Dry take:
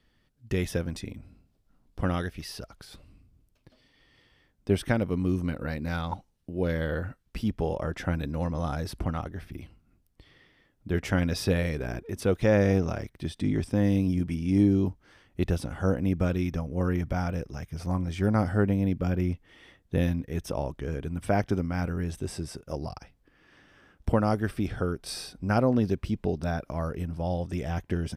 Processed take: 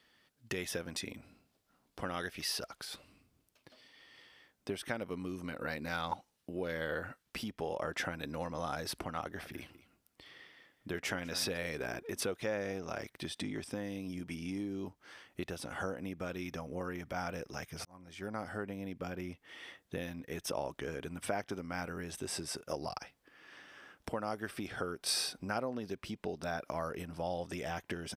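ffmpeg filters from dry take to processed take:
-filter_complex "[0:a]asplit=3[a][b][c];[a]afade=t=out:st=9.39:d=0.02[d];[b]aecho=1:1:198:0.168,afade=t=in:st=9.39:d=0.02,afade=t=out:st=11.56:d=0.02[e];[c]afade=t=in:st=11.56:d=0.02[f];[d][e][f]amix=inputs=3:normalize=0,asplit=2[g][h];[g]atrim=end=17.85,asetpts=PTS-STARTPTS,afade=t=out:st=17.846:d=0.004:c=hsin[i];[h]atrim=start=17.85,asetpts=PTS-STARTPTS,afade=t=in:d=1.41[j];[i][j]concat=n=2:v=0:a=1,acompressor=threshold=-32dB:ratio=6,highpass=f=680:p=1,volume=5dB"

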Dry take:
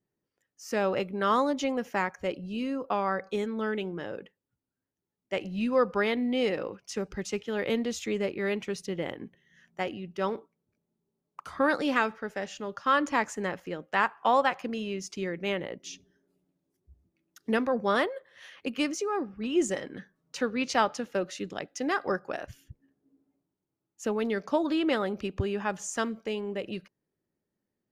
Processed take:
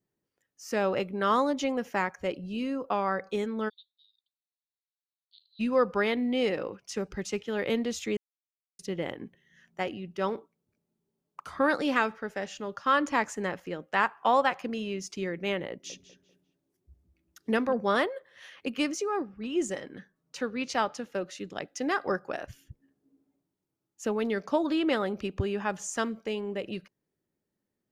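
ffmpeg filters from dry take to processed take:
-filter_complex "[0:a]asplit=3[a][b][c];[a]afade=t=out:st=3.68:d=0.02[d];[b]asuperpass=centerf=4000:order=8:qfactor=4.2,afade=t=in:st=3.68:d=0.02,afade=t=out:st=5.59:d=0.02[e];[c]afade=t=in:st=5.59:d=0.02[f];[d][e][f]amix=inputs=3:normalize=0,asettb=1/sr,asplit=3[g][h][i];[g]atrim=end=15.704[j];[h]atrim=start=15.7:end=17.73,asetpts=PTS-STARTPTS,afade=t=in:d=0.004:c=qsin,afade=t=out:st=2.026:d=0.004:c=qsin,asplit=2[k][l];[l]adelay=196,lowpass=f=3.8k:p=1,volume=-12dB,asplit=2[m][n];[n]adelay=196,lowpass=f=3.8k:p=1,volume=0.33,asplit=2[o][p];[p]adelay=196,lowpass=f=3.8k:p=1,volume=0.33[q];[k][m][o][q]amix=inputs=4:normalize=0,atrim=end_sample=89523[r];[i]atrim=start=17.726[s];[j][r]acrossfade=d=0.004:c1=hsin:c2=qsin[t];[t][s]acrossfade=d=0.004:c1=qsin:c2=hsin,asplit=5[u][v][w][x][y];[u]atrim=end=8.17,asetpts=PTS-STARTPTS,afade=t=out:st=8.166:d=0.004:c=hsin[z];[v]atrim=start=8.17:end=8.79,asetpts=PTS-STARTPTS,volume=0[aa];[w]atrim=start=8.79:end=19.222,asetpts=PTS-STARTPTS,afade=t=in:d=0.004:c=hsin[ab];[x]atrim=start=19.218:end=21.562,asetpts=PTS-STARTPTS,volume=-3dB[ac];[y]atrim=start=21.558[ad];[z][aa][ab]concat=n=3:v=0:a=1[ae];[ae][ac]acrossfade=d=0.004:c1=hsin:c2=hsin[af];[af][ad]acrossfade=d=0.004:c1=hsin:c2=hsin"

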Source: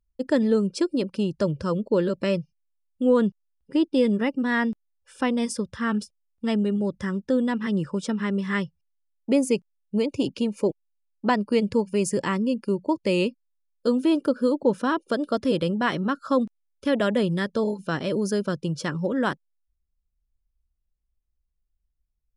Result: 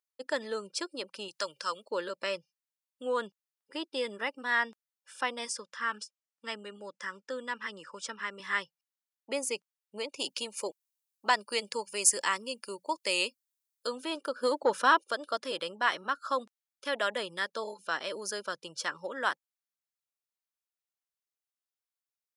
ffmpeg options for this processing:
-filter_complex "[0:a]asettb=1/sr,asplit=3[a][b][c];[a]atrim=end=1.284[d];[b]atrim=start=1.28:end=1.91,asetpts=PTS-STARTPTS,afade=t=in:d=0.004:c=qsin,afade=t=out:st=0.626:d=0.004:c=qsin,tiltshelf=f=970:g=-7.5[e];[c]atrim=start=1.906[f];[d][e]acrossfade=d=0.004:c1=hsin:c2=qsin[g];[g][f]acrossfade=d=0.004:c1=qsin:c2=hsin,asettb=1/sr,asplit=3[h][i][j];[h]atrim=end=5.504[k];[i]atrim=start=5.5:end=8.4,asetpts=PTS-STARTPTS,afade=t=in:d=0.004:c=qsin,afade=t=out:st=2.896:d=0.004:c=qsin,highpass=180,equalizer=f=360:t=q:w=4:g=-5,equalizer=f=730:t=q:w=4:g=-9,equalizer=f=3.8k:t=q:w=4:g=-5,lowpass=f=8.6k:w=0.5412,lowpass=f=8.6k:w=1.3066[l];[j]atrim=start=8.396[m];[k][l]acrossfade=d=0.004:c1=hsin:c2=qsin[n];[n][m]acrossfade=d=0.004:c1=qsin:c2=hsin,asettb=1/sr,asplit=3[o][p][q];[o]atrim=end=10.194[r];[p]atrim=start=10.19:end=13.87,asetpts=PTS-STARTPTS,afade=t=in:d=0.004:c=qsin,afade=t=out:st=3.676:d=0.004:c=qsin,highshelf=f=4.3k:g=11[s];[q]atrim=start=13.866[t];[r][s]acrossfade=d=0.004:c1=hsin:c2=qsin[u];[u][t]acrossfade=d=0.004:c1=qsin:c2=hsin,asettb=1/sr,asplit=3[v][w][x];[v]atrim=end=14.434[y];[w]atrim=start=14.43:end=15.04,asetpts=PTS-STARTPTS,afade=t=in:d=0.004:c=qsin,afade=t=out:st=0.606:d=0.004:c=qsin,acontrast=72[z];[x]atrim=start=15.036[aa];[y][z]acrossfade=d=0.004:c1=hsin:c2=qsin[ab];[ab][aa]acrossfade=d=0.004:c1=qsin:c2=hsin,highpass=920,equalizer=f=2.5k:t=o:w=0.77:g=-2"

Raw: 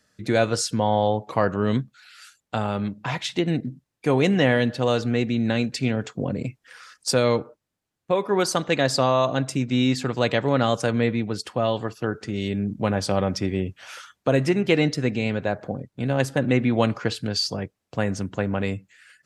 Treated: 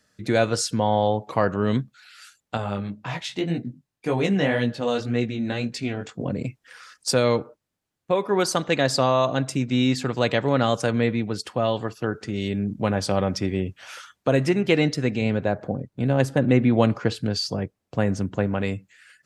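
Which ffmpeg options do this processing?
-filter_complex "[0:a]asettb=1/sr,asplit=3[a][b][c];[a]atrim=end=2.574[d];[b]atrim=start=2.57:end=6.26,asetpts=PTS-STARTPTS,afade=t=in:d=0.004:c=qsin,afade=t=out:st=3.686:d=0.004:c=qsin,flanger=delay=16.5:depth=4.6:speed=1.9[e];[c]atrim=start=6.256[f];[d][e]acrossfade=d=0.004:c1=hsin:c2=qsin[g];[g][f]acrossfade=d=0.004:c1=qsin:c2=hsin,asettb=1/sr,asplit=3[h][i][j];[h]atrim=end=15.214[k];[i]atrim=start=15.21:end=18.47,asetpts=PTS-STARTPTS,afade=t=in:d=0.004:c=qsin,afade=t=out:st=3.256:d=0.004:c=qsin,tiltshelf=f=970:g=3[l];[j]atrim=start=18.466[m];[k][l]acrossfade=d=0.004:c1=hsin:c2=qsin[n];[n][m]acrossfade=d=0.004:c1=qsin:c2=hsin"

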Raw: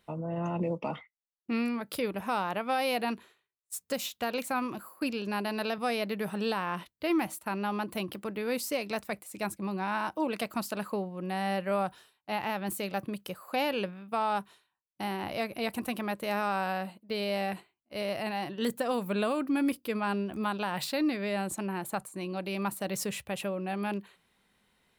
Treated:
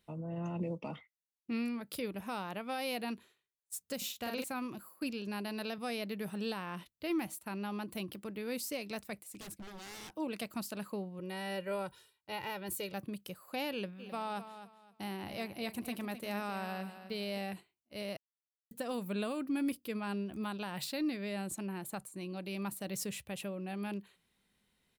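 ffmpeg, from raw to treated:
-filter_complex "[0:a]asettb=1/sr,asplit=3[a][b][c];[a]atrim=end=3.974[d];[b]atrim=start=3.97:end=4.44,asetpts=PTS-STARTPTS,afade=t=in:d=0.004:c=qsin,afade=t=out:st=0.466:d=0.004:c=qsin,asplit=2[e][f];[f]adelay=46,volume=-3dB[g];[e][g]amix=inputs=2:normalize=0,atrim=end_sample=20727[h];[c]atrim=start=4.436[i];[d][h]acrossfade=d=0.004:c1=hsin:c2=qsin[j];[j][i]acrossfade=d=0.004:c1=qsin:c2=hsin,asettb=1/sr,asplit=3[k][l][m];[k]atrim=end=9.244[n];[l]atrim=start=9.24:end=10.15,asetpts=PTS-STARTPTS,afade=t=in:d=0.004:c=qsin,afade=t=out:st=0.906:d=0.004:c=qsin,aeval=exprs='0.0158*(abs(mod(val(0)/0.0158+3,4)-2)-1)':c=same[o];[m]atrim=start=10.146[p];[n][o]acrossfade=d=0.004:c1=hsin:c2=qsin[q];[q][p]acrossfade=d=0.004:c1=qsin:c2=hsin,asettb=1/sr,asplit=3[r][s][t];[r]atrim=end=11.194[u];[s]atrim=start=11.19:end=12.93,asetpts=PTS-STARTPTS,afade=t=in:d=0.004:c=qsin,afade=t=out:st=1.736:d=0.004:c=qsin,aecho=1:1:2.1:0.69,atrim=end_sample=76734[v];[t]atrim=start=12.926[w];[u][v]acrossfade=d=0.004:c1=hsin:c2=qsin[x];[x][w]acrossfade=d=0.004:c1=qsin:c2=hsin,asplit=3[y][z][aa];[y]afade=t=out:st=13.98:d=0.02[ab];[z]aecho=1:1:260|520|780:0.266|0.0692|0.018,afade=t=in:st=13.98:d=0.02,afade=t=out:st=17.37:d=0.02[ac];[aa]afade=t=in:st=17.37:d=0.02[ad];[ab][ac][ad]amix=inputs=3:normalize=0,asplit=3[ae][af][ag];[ae]atrim=end=18.17,asetpts=PTS-STARTPTS,afade=t=out:st=18.166:d=0.004:c=hsin[ah];[af]atrim=start=18.17:end=18.71,asetpts=PTS-STARTPTS,volume=0[ai];[ag]atrim=start=18.71,asetpts=PTS-STARTPTS,afade=t=in:d=0.004:c=hsin[aj];[ah][ai][aj]concat=n=3:v=0:a=1,equalizer=f=970:w=0.5:g=-7,volume=-3.5dB"

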